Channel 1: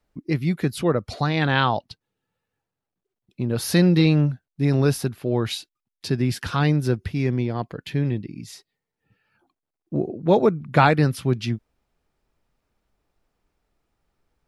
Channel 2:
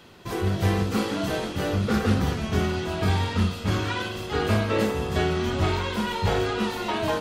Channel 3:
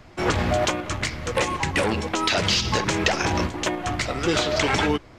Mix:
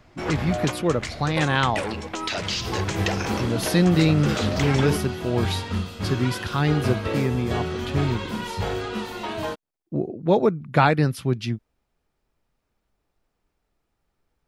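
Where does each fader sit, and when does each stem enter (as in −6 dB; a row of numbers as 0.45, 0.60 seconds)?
−1.5, −3.5, −6.0 decibels; 0.00, 2.35, 0.00 seconds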